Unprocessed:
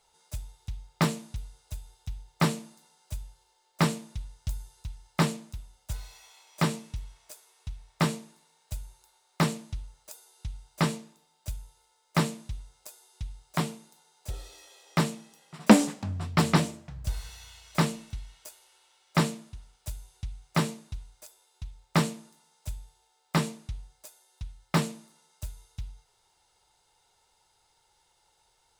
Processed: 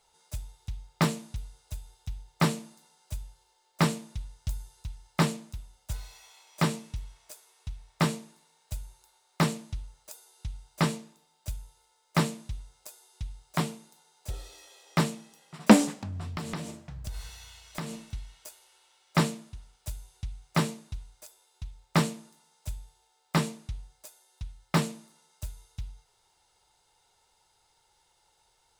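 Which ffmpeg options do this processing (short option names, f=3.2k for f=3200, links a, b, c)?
-filter_complex "[0:a]asettb=1/sr,asplit=3[a][b][c];[a]atrim=end=15.934[d];[b]atrim=start=15.93:end=18.09,asetpts=PTS-STARTPTS,afade=t=in:d=0.004:c=qsin,afade=t=out:st=2.156:d=0.004:c=qsin,acompressor=threshold=-32dB:ratio=6:attack=3.2:release=140:knee=1:detection=peak[e];[c]atrim=start=18.086[f];[d][e]acrossfade=d=0.004:c1=hsin:c2=qsin[g];[g][f]acrossfade=d=0.004:c1=qsin:c2=hsin"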